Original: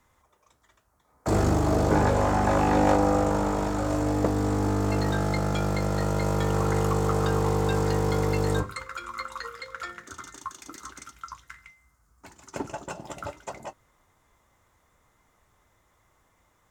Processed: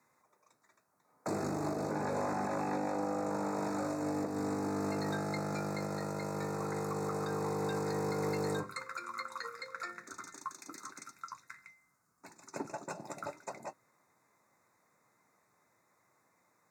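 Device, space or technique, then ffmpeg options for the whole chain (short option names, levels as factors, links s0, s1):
PA system with an anti-feedback notch: -af "highpass=f=140:w=0.5412,highpass=f=140:w=1.3066,asuperstop=centerf=3100:order=12:qfactor=3.1,alimiter=limit=0.0891:level=0:latency=1:release=222,volume=0.562"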